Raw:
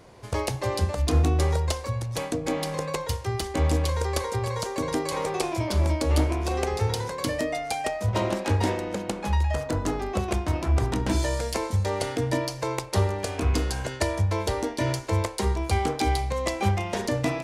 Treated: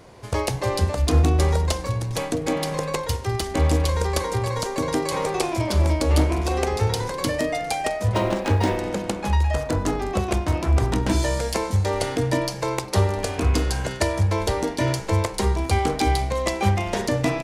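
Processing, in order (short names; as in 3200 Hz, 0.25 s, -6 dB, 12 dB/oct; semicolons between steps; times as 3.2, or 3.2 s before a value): frequency-shifting echo 0.202 s, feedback 52%, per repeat -130 Hz, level -18 dB; 8.14–8.77 decimation joined by straight lines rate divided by 3×; gain +3.5 dB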